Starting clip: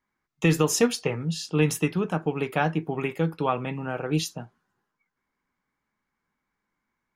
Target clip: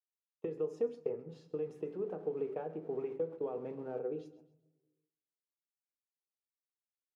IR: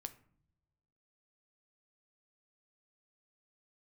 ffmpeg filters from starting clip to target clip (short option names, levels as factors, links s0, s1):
-filter_complex "[0:a]asettb=1/sr,asplit=3[s0][s1][s2];[s0]atrim=end=1.294[s3];[s1]atrim=start=1.29:end=3.99,asetpts=PTS-STARTPTS,afade=t=in:d=0.004:c=qsin,afade=t=out:st=2.696:d=0.004:c=qsin,aeval=exprs='val(0)+0.5*0.02*sgn(val(0))':c=same[s4];[s2]atrim=start=3.986[s5];[s3][s4]acrossfade=d=0.004:c1=hsin:c2=qsin[s6];[s6][s5]acrossfade=d=0.004:c1=qsin:c2=hsin,agate=range=0.0631:threshold=0.0316:ratio=16:detection=peak,acompressor=threshold=0.0447:ratio=6,bandpass=f=440:t=q:w=3.8:csg=0,aecho=1:1:132|264|396:0.141|0.048|0.0163[s7];[1:a]atrim=start_sample=2205[s8];[s7][s8]afir=irnorm=-1:irlink=0,volume=1.58"